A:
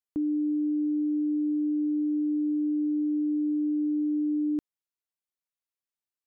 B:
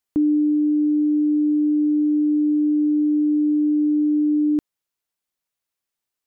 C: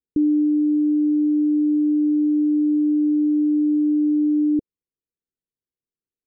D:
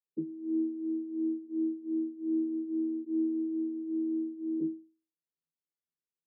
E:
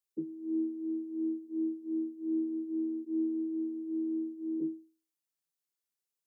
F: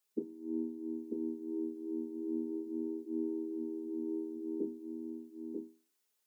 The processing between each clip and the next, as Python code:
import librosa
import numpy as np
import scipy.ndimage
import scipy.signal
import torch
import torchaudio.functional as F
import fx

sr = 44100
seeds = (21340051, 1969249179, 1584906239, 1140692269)

y1 = fx.rider(x, sr, range_db=10, speed_s=0.5)
y1 = F.gain(torch.from_numpy(y1), 8.5).numpy()
y2 = scipy.signal.sosfilt(scipy.signal.butter(12, 500.0, 'lowpass', fs=sr, output='sos'), y1)
y3 = fx.chorus_voices(y2, sr, voices=4, hz=0.4, base_ms=27, depth_ms=3.6, mix_pct=45)
y3 = fx.hum_notches(y3, sr, base_hz=50, count=6)
y3 = fx.vocoder(y3, sr, bands=32, carrier='saw', carrier_hz=80.4)
y3 = F.gain(torch.from_numpy(y3), -5.0).numpy()
y4 = fx.bass_treble(y3, sr, bass_db=-6, treble_db=7)
y5 = fx.brickwall_highpass(y4, sr, low_hz=190.0)
y5 = y5 + 0.78 * np.pad(y5, (int(4.7 * sr / 1000.0), 0))[:len(y5)]
y5 = y5 + 10.0 ** (-4.5 / 20.0) * np.pad(y5, (int(943 * sr / 1000.0), 0))[:len(y5)]
y5 = F.gain(torch.from_numpy(y5), 6.0).numpy()